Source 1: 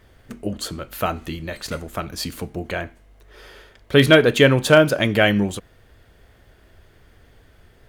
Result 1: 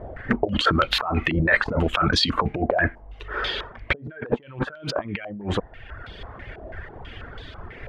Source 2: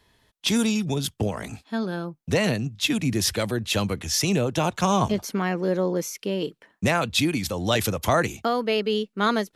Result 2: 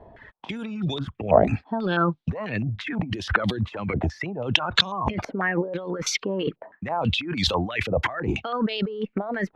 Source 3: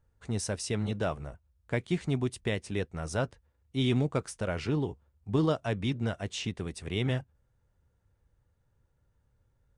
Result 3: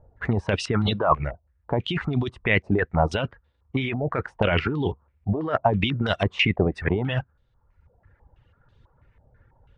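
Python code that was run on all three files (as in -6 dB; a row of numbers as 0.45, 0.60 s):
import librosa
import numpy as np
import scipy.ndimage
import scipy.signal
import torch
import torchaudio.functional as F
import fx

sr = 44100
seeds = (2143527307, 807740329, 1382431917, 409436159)

y = fx.over_compress(x, sr, threshold_db=-33.0, ratio=-1.0)
y = fx.dereverb_blind(y, sr, rt60_s=1.0)
y = fx.filter_held_lowpass(y, sr, hz=6.1, low_hz=680.0, high_hz=3700.0)
y = y * 10.0 ** (-26 / 20.0) / np.sqrt(np.mean(np.square(y)))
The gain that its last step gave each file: +5.0, +6.5, +11.0 dB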